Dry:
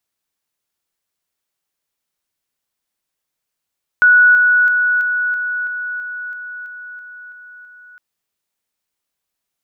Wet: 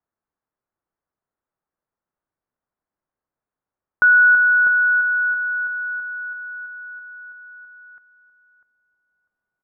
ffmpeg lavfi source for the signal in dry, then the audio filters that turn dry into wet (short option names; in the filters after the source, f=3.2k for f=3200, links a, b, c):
-f lavfi -i "aevalsrc='pow(10,(-6-3*floor(t/0.33))/20)*sin(2*PI*1470*t)':d=3.96:s=44100"
-filter_complex "[0:a]lowpass=f=1.5k:w=0.5412,lowpass=f=1.5k:w=1.3066,asplit=2[a][b];[b]adelay=647,lowpass=f=950:p=1,volume=-8dB,asplit=2[c][d];[d]adelay=647,lowpass=f=950:p=1,volume=0.31,asplit=2[e][f];[f]adelay=647,lowpass=f=950:p=1,volume=0.31,asplit=2[g][h];[h]adelay=647,lowpass=f=950:p=1,volume=0.31[i];[a][c][e][g][i]amix=inputs=5:normalize=0"